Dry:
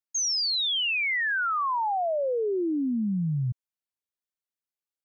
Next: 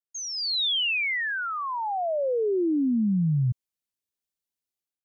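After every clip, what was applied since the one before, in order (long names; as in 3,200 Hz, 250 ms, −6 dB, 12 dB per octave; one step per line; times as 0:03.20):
parametric band 1,200 Hz −8 dB 1.8 octaves
automatic gain control gain up to 12.5 dB
level −8.5 dB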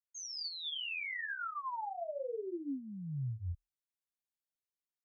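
brickwall limiter −26.5 dBFS, peak gain reduction 7 dB
multi-voice chorus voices 2, 0.74 Hz, delay 20 ms, depth 4.5 ms
frequency shifter −40 Hz
level −7.5 dB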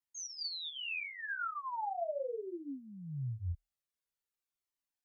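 flanger whose copies keep moving one way falling 0.64 Hz
level +4.5 dB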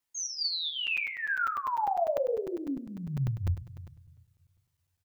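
single-tap delay 78 ms −12.5 dB
on a send at −15 dB: convolution reverb RT60 1.1 s, pre-delay 4 ms
on the sum: regular buffer underruns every 0.10 s, samples 256, zero, from 0:00.87
level +8.5 dB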